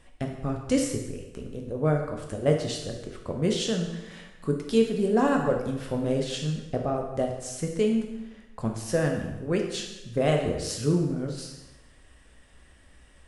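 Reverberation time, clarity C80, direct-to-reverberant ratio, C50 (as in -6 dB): 0.95 s, 7.0 dB, 1.5 dB, 5.0 dB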